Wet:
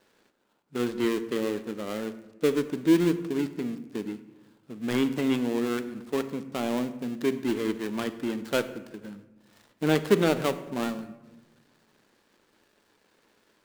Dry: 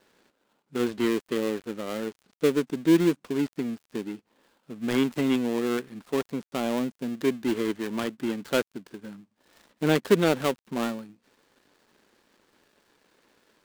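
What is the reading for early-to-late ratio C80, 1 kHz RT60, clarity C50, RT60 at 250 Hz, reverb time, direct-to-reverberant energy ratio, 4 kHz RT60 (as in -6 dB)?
15.0 dB, 0.95 s, 13.5 dB, 1.6 s, 1.1 s, 11.0 dB, 0.65 s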